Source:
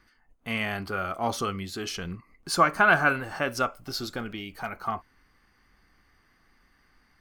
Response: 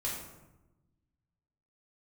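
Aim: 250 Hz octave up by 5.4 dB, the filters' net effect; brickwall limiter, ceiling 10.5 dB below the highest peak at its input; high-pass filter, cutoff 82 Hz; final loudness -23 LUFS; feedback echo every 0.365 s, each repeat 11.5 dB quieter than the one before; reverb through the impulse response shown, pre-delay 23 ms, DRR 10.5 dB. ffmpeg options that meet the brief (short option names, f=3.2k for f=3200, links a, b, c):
-filter_complex "[0:a]highpass=82,equalizer=f=250:t=o:g=7,alimiter=limit=-16.5dB:level=0:latency=1,aecho=1:1:365|730|1095:0.266|0.0718|0.0194,asplit=2[a][b];[1:a]atrim=start_sample=2205,adelay=23[c];[b][c]afir=irnorm=-1:irlink=0,volume=-14dB[d];[a][d]amix=inputs=2:normalize=0,volume=6.5dB"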